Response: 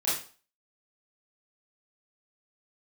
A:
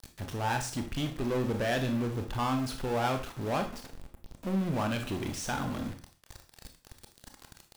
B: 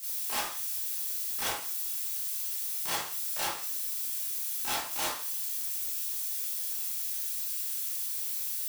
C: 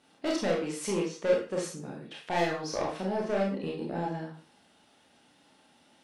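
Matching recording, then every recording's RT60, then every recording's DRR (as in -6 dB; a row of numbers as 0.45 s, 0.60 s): B; 0.40 s, 0.40 s, 0.40 s; 5.0 dB, -10.5 dB, -3.0 dB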